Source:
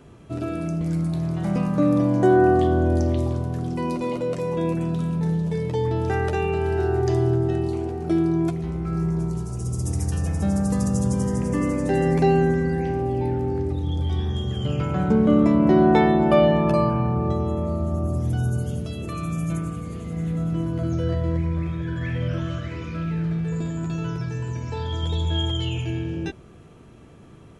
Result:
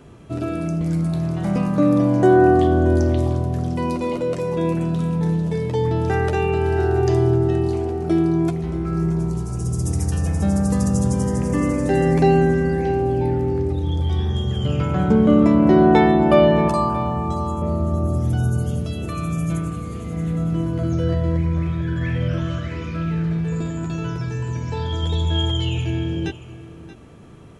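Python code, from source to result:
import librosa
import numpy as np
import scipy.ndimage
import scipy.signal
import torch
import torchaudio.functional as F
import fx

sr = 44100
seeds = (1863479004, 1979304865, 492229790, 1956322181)

p1 = fx.graphic_eq(x, sr, hz=(125, 500, 1000, 2000, 8000), db=(-7, -10, 8, -11, 10), at=(16.68, 17.62))
p2 = p1 + fx.echo_single(p1, sr, ms=629, db=-15.5, dry=0)
y = F.gain(torch.from_numpy(p2), 3.0).numpy()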